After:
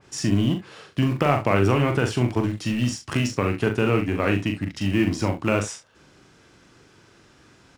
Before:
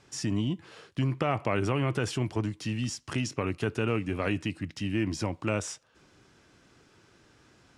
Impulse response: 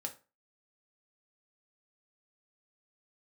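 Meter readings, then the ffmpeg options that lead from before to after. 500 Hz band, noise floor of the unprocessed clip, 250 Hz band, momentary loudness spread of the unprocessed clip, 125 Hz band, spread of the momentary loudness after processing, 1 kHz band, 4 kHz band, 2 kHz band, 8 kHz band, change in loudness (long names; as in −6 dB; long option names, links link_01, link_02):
+8.0 dB, −62 dBFS, +8.0 dB, 6 LU, +7.0 dB, 6 LU, +8.0 dB, +6.0 dB, +7.5 dB, +4.5 dB, +7.5 dB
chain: -filter_complex "[0:a]asplit=2[link_01][link_02];[link_02]aeval=exprs='val(0)*gte(abs(val(0)),0.0422)':channel_layout=same,volume=-11.5dB[link_03];[link_01][link_03]amix=inputs=2:normalize=0,aecho=1:1:41|69:0.531|0.224,adynamicequalizer=threshold=0.00631:dfrequency=2900:dqfactor=0.7:tfrequency=2900:tqfactor=0.7:attack=5:release=100:ratio=0.375:range=2.5:mode=cutabove:tftype=highshelf,volume=5dB"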